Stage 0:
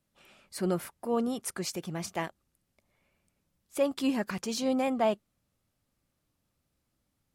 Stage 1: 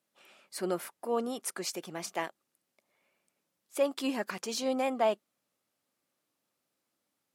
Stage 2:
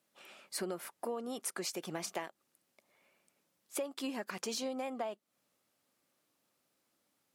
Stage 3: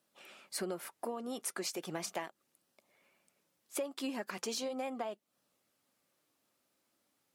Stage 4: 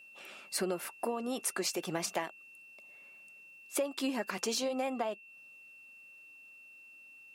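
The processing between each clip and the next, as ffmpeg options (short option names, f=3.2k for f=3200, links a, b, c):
-af "highpass=320"
-af "acompressor=threshold=-38dB:ratio=20,volume=3.5dB"
-af "flanger=delay=0.2:depth=3.1:regen=-76:speed=0.37:shape=sinusoidal,volume=4.5dB"
-af "aeval=exprs='val(0)+0.00141*sin(2*PI*2700*n/s)':c=same,volume=4.5dB"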